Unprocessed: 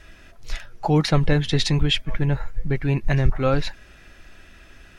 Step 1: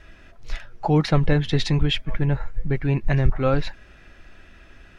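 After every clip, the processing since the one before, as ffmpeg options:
-af "lowpass=f=3100:p=1"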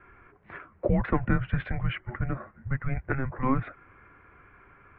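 -af "afftfilt=real='re*lt(hypot(re,im),1.12)':imag='im*lt(hypot(re,im),1.12)':win_size=1024:overlap=0.75,highpass=f=160:t=q:w=0.5412,highpass=f=160:t=q:w=1.307,lowpass=f=2400:t=q:w=0.5176,lowpass=f=2400:t=q:w=0.7071,lowpass=f=2400:t=q:w=1.932,afreqshift=-270,volume=0.891"

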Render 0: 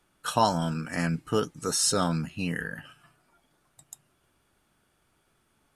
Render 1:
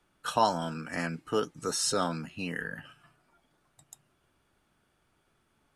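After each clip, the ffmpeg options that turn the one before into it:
-filter_complex "[0:a]highshelf=f=7400:g=-7.5,acrossover=split=230[s0][s1];[s0]acompressor=threshold=0.00794:ratio=6[s2];[s2][s1]amix=inputs=2:normalize=0,volume=0.841"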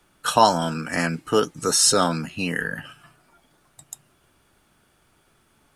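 -af "highshelf=f=5700:g=6,volume=2.82"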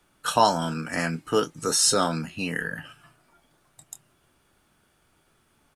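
-filter_complex "[0:a]asplit=2[s0][s1];[s1]adelay=25,volume=0.251[s2];[s0][s2]amix=inputs=2:normalize=0,volume=0.668"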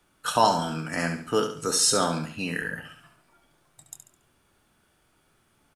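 -af "aecho=1:1:70|140|210|280:0.398|0.147|0.0545|0.0202,volume=0.841"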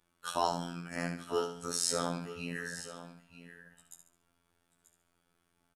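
-af "afftfilt=real='hypot(re,im)*cos(PI*b)':imag='0':win_size=2048:overlap=0.75,aecho=1:1:936:0.211,volume=0.447"

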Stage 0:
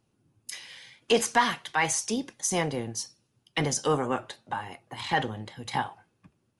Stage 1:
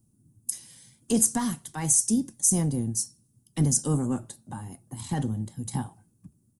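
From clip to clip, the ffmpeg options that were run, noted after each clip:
-af "firequalizer=gain_entry='entry(230,0);entry(440,-16);entry(2300,-26);entry(8200,4)':delay=0.05:min_phase=1,volume=2.51"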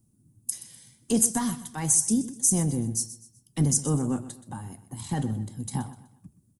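-af "aecho=1:1:125|250|375:0.178|0.064|0.023"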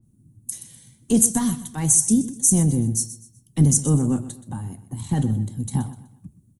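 -af "lowshelf=f=380:g=10,bandreject=f=5000:w=5.7,adynamicequalizer=threshold=0.00708:dfrequency=2600:dqfactor=0.7:tfrequency=2600:tqfactor=0.7:attack=5:release=100:ratio=0.375:range=3:mode=boostabove:tftype=highshelf,volume=0.891"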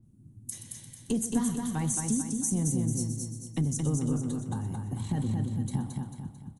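-af "lowpass=f=4000:p=1,acompressor=threshold=0.0316:ratio=3,aecho=1:1:222|444|666|888|1110:0.631|0.271|0.117|0.0502|0.0216"

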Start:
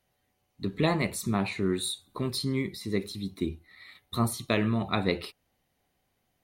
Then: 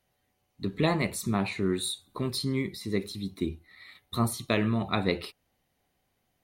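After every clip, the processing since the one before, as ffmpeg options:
-af anull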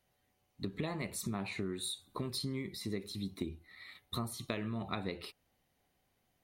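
-af "acompressor=threshold=0.0251:ratio=10,volume=0.794"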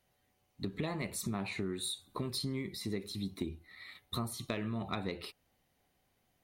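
-af "asoftclip=type=tanh:threshold=0.0708,volume=1.19"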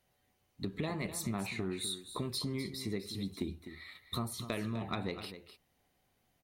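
-af "aecho=1:1:253:0.266"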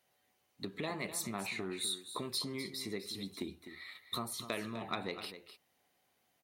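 -af "highpass=f=420:p=1,volume=1.19"

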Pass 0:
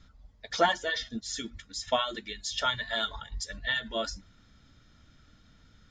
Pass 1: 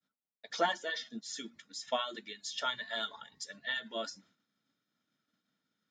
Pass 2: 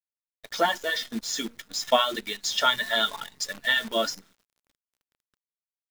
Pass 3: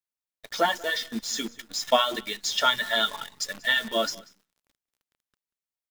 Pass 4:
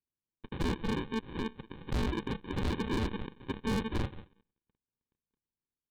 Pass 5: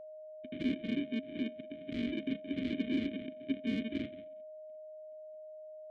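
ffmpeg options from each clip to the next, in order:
-af "highpass=f=180:w=0.5412,highpass=f=180:w=1.3066,agate=range=0.0224:threshold=0.002:ratio=3:detection=peak,volume=0.501"
-af "dynaudnorm=f=370:g=5:m=2.51,acrusher=bits=8:dc=4:mix=0:aa=0.000001,volume=1.68"
-af "aecho=1:1:187:0.0708"
-af "aresample=8000,acrusher=samples=12:mix=1:aa=0.000001,aresample=44100,volume=25.1,asoftclip=hard,volume=0.0398"
-filter_complex "[0:a]asplit=3[s0][s1][s2];[s0]bandpass=f=270:t=q:w=8,volume=1[s3];[s1]bandpass=f=2290:t=q:w=8,volume=0.501[s4];[s2]bandpass=f=3010:t=q:w=8,volume=0.355[s5];[s3][s4][s5]amix=inputs=3:normalize=0,aeval=exprs='val(0)+0.002*sin(2*PI*620*n/s)':c=same,volume=2.51"

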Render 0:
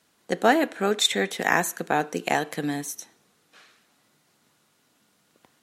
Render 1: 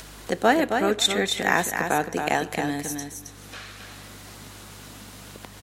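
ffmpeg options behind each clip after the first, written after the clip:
-filter_complex "[0:a]acompressor=mode=upward:threshold=0.0447:ratio=2.5,aeval=exprs='val(0)+0.00501*(sin(2*PI*50*n/s)+sin(2*PI*2*50*n/s)/2+sin(2*PI*3*50*n/s)/3+sin(2*PI*4*50*n/s)/4+sin(2*PI*5*50*n/s)/5)':c=same,asplit=2[s0][s1];[s1]aecho=0:1:269|538|807:0.501|0.0802|0.0128[s2];[s0][s2]amix=inputs=2:normalize=0"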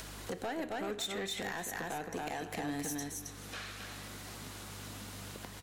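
-af "acompressor=threshold=0.0447:ratio=10,asoftclip=type=tanh:threshold=0.0376,flanger=delay=9.7:depth=5.7:regen=88:speed=0.4:shape=sinusoidal,volume=1.19"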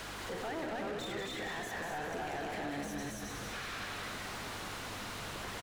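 -filter_complex "[0:a]alimiter=level_in=7.5:limit=0.0631:level=0:latency=1,volume=0.133,asplit=2[s0][s1];[s1]highpass=f=720:p=1,volume=17.8,asoftclip=type=tanh:threshold=0.00891[s2];[s0][s2]amix=inputs=2:normalize=0,lowpass=f=2100:p=1,volume=0.501,asplit=2[s3][s4];[s4]asplit=6[s5][s6][s7][s8][s9][s10];[s5]adelay=189,afreqshift=-81,volume=0.562[s11];[s6]adelay=378,afreqshift=-162,volume=0.282[s12];[s7]adelay=567,afreqshift=-243,volume=0.141[s13];[s8]adelay=756,afreqshift=-324,volume=0.07[s14];[s9]adelay=945,afreqshift=-405,volume=0.0351[s15];[s10]adelay=1134,afreqshift=-486,volume=0.0176[s16];[s11][s12][s13][s14][s15][s16]amix=inputs=6:normalize=0[s17];[s3][s17]amix=inputs=2:normalize=0,volume=2.11"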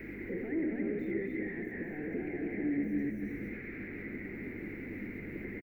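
-filter_complex "[0:a]firequalizer=gain_entry='entry(140,0);entry(200,8);entry(330,11);entry(640,-13);entry(1100,-24);entry(2100,9);entry(3100,-26);entry(8100,-30);entry(15000,-5)':delay=0.05:min_phase=1,acrossover=split=2000[s0][s1];[s1]alimiter=level_in=16.8:limit=0.0631:level=0:latency=1:release=319,volume=0.0596[s2];[s0][s2]amix=inputs=2:normalize=0"

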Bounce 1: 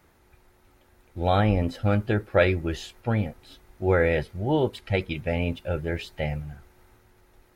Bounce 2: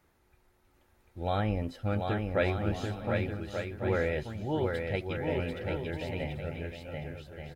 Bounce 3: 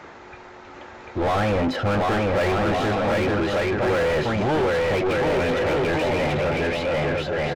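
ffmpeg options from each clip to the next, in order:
-af "aecho=1:1:740|1184|1450|1610|1706:0.631|0.398|0.251|0.158|0.1,volume=0.376"
-filter_complex "[0:a]aresample=16000,aresample=44100,acrossover=split=3700[s0][s1];[s1]acompressor=threshold=0.00158:ratio=4:attack=1:release=60[s2];[s0][s2]amix=inputs=2:normalize=0,asplit=2[s3][s4];[s4]highpass=f=720:p=1,volume=89.1,asoftclip=type=tanh:threshold=0.178[s5];[s3][s5]amix=inputs=2:normalize=0,lowpass=f=1300:p=1,volume=0.501,volume=1.19"

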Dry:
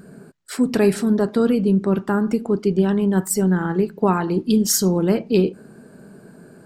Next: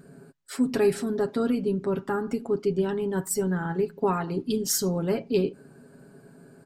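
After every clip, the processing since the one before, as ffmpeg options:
-af "aecho=1:1:7.3:0.6,volume=0.422"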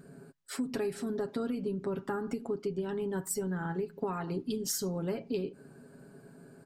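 -af "acompressor=threshold=0.0398:ratio=6,volume=0.75"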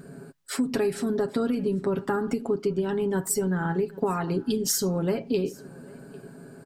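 -af "aecho=1:1:798:0.0631,volume=2.51"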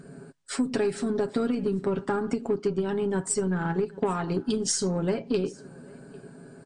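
-af "aeval=exprs='0.266*(cos(1*acos(clip(val(0)/0.266,-1,1)))-cos(1*PI/2))+0.0133*(cos(6*acos(clip(val(0)/0.266,-1,1)))-cos(6*PI/2))+0.00473*(cos(7*acos(clip(val(0)/0.266,-1,1)))-cos(7*PI/2))+0.0133*(cos(8*acos(clip(val(0)/0.266,-1,1)))-cos(8*PI/2))':c=same" -ar 22050 -c:a libmp3lame -b:a 48k

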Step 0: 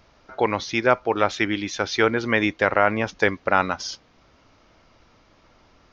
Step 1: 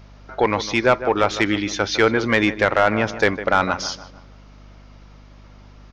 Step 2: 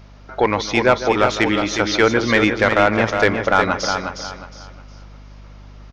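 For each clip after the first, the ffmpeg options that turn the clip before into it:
-filter_complex "[0:a]asplit=2[s0][s1];[s1]adelay=154,lowpass=f=2300:p=1,volume=0.2,asplit=2[s2][s3];[s3]adelay=154,lowpass=f=2300:p=1,volume=0.45,asplit=2[s4][s5];[s5]adelay=154,lowpass=f=2300:p=1,volume=0.45,asplit=2[s6][s7];[s7]adelay=154,lowpass=f=2300:p=1,volume=0.45[s8];[s0][s2][s4][s6][s8]amix=inputs=5:normalize=0,aeval=exprs='val(0)+0.00398*(sin(2*PI*50*n/s)+sin(2*PI*2*50*n/s)/2+sin(2*PI*3*50*n/s)/3+sin(2*PI*4*50*n/s)/4+sin(2*PI*5*50*n/s)/5)':c=same,acontrast=85,volume=0.708"
-af "aecho=1:1:361|722|1083|1444:0.473|0.132|0.0371|0.0104,volume=1.19"

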